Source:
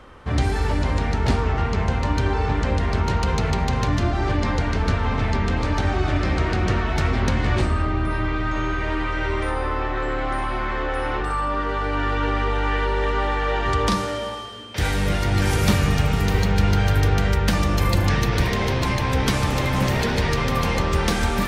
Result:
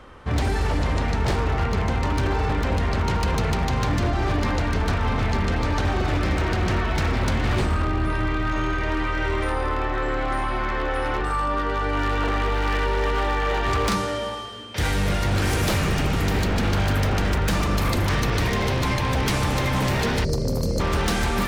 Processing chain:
gain on a spectral selection 0:20.24–0:20.80, 680–4,100 Hz −26 dB
wave folding −16 dBFS

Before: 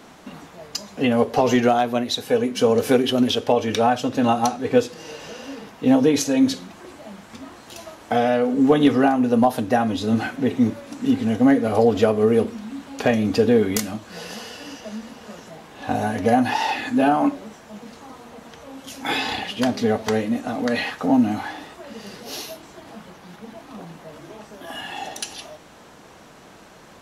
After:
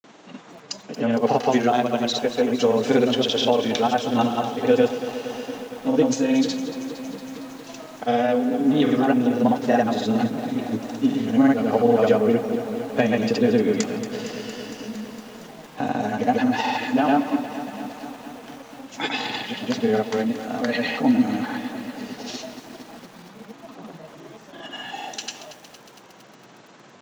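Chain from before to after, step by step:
granular cloud, pitch spread up and down by 0 semitones
Chebyshev band-pass filter 120–7,200 Hz, order 4
feedback echo at a low word length 230 ms, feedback 80%, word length 7 bits, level −12 dB

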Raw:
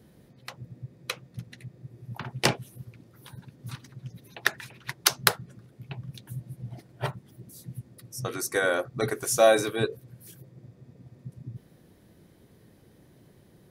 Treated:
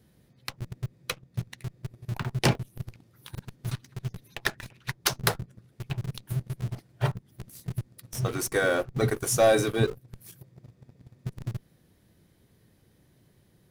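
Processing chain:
leveller curve on the samples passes 2
low-shelf EQ 190 Hz +11 dB
in parallel at −11 dB: comparator with hysteresis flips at −27 dBFS
on the sum: one half of a high-frequency compander encoder only
level −8.5 dB

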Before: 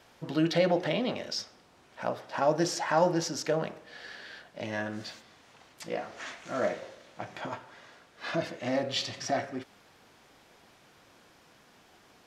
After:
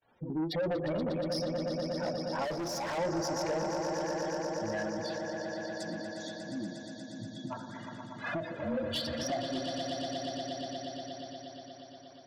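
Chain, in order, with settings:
0:05.17–0:07.51: time-frequency box erased 350–3,300 Hz
noise gate −57 dBFS, range −38 dB
gate on every frequency bin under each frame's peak −10 dB strong
echo that builds up and dies away 119 ms, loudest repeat 5, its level −11 dB
in parallel at +2.5 dB: downward compressor, threshold −36 dBFS, peak gain reduction 15 dB
0:02.44–0:02.98: on the sum: hard clipping −28.5 dBFS, distortion −14 dB
0:08.57–0:09.23: frequency shifter −29 Hz
soft clipping −24 dBFS, distortion −12 dB
every ending faded ahead of time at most 120 dB per second
level −3.5 dB

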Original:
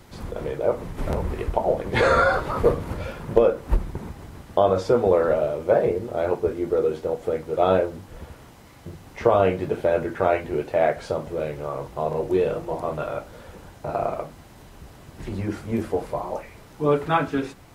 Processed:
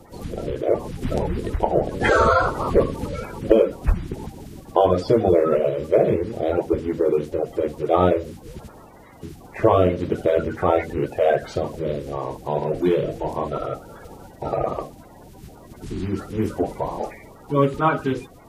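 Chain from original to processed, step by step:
spectral magnitudes quantised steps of 30 dB
wrong playback speed 25 fps video run at 24 fps
level +2.5 dB

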